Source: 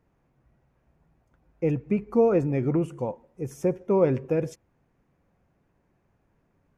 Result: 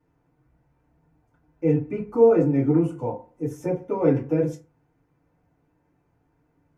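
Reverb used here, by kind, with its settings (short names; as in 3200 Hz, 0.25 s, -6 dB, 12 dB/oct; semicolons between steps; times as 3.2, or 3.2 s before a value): FDN reverb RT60 0.32 s, low-frequency decay 1×, high-frequency decay 0.55×, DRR -8.5 dB; gain -8.5 dB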